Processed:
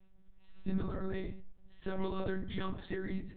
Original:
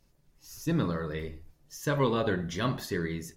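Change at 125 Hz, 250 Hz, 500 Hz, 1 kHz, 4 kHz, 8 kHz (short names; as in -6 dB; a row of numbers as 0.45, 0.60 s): -10.0 dB, -6.5 dB, -9.0 dB, -10.5 dB, -11.5 dB, under -35 dB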